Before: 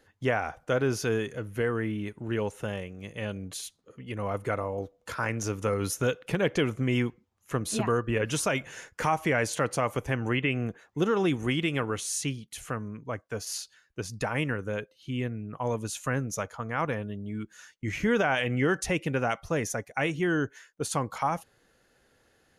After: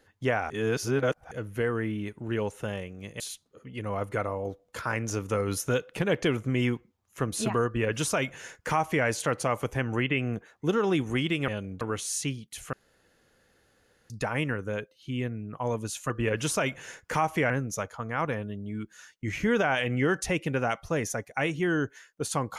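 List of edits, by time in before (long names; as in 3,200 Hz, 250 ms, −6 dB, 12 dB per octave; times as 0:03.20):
0:00.50–0:01.31: reverse
0:03.20–0:03.53: move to 0:11.81
0:07.99–0:09.39: duplicate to 0:16.10
0:12.73–0:14.10: fill with room tone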